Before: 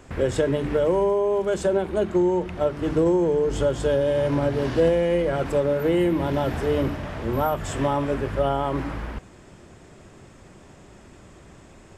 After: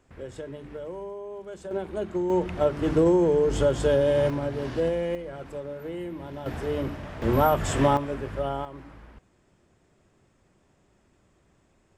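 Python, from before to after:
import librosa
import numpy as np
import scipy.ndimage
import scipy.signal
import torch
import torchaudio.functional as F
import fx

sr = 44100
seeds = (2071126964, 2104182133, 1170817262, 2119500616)

y = fx.gain(x, sr, db=fx.steps((0.0, -16.0), (1.71, -7.5), (2.3, 0.0), (4.3, -6.5), (5.15, -14.0), (6.46, -6.0), (7.22, 2.5), (7.97, -6.5), (8.65, -16.5)))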